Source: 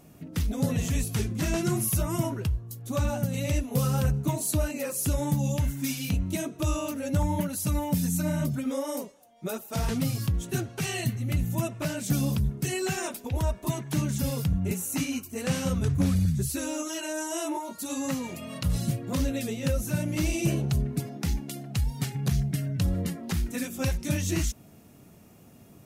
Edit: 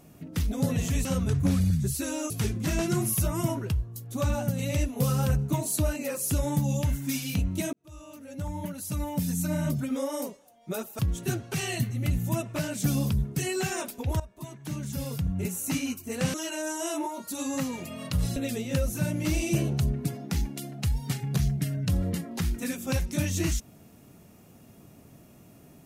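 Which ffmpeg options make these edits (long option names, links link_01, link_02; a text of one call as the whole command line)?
ffmpeg -i in.wav -filter_complex "[0:a]asplit=8[link_01][link_02][link_03][link_04][link_05][link_06][link_07][link_08];[link_01]atrim=end=1.052[link_09];[link_02]atrim=start=15.598:end=16.852[link_10];[link_03]atrim=start=1.048:end=6.48,asetpts=PTS-STARTPTS,afade=type=out:start_time=5.428:duration=0.004:curve=hsin[link_11];[link_04]atrim=start=6.48:end=9.742,asetpts=PTS-STARTPTS,afade=type=in:duration=1.98[link_12];[link_05]atrim=start=10.248:end=13.46,asetpts=PTS-STARTPTS,afade=type=out:start_time=3.208:duration=0.004:curve=hsin:silence=0.141254[link_13];[link_06]atrim=start=13.46:end=15.602,asetpts=PTS-STARTPTS,afade=type=in:duration=1.55:silence=0.141254[link_14];[link_07]atrim=start=16.848:end=18.872[link_15];[link_08]atrim=start=19.278[link_16];[link_09][link_10]acrossfade=duration=0.004:curve1=hsin:curve2=hsin[link_17];[link_11][link_12]concat=n=2:v=0:a=1[link_18];[link_17][link_18]acrossfade=duration=0.004:curve1=hsin:curve2=hsin[link_19];[link_13][link_14]concat=n=2:v=0:a=1[link_20];[link_19][link_20]acrossfade=duration=0.004:curve1=hsin:curve2=hsin[link_21];[link_21][link_15]acrossfade=duration=0.004:curve1=hsin:curve2=hsin[link_22];[link_22][link_16]acrossfade=duration=0.004:curve1=hsin:curve2=hsin" out.wav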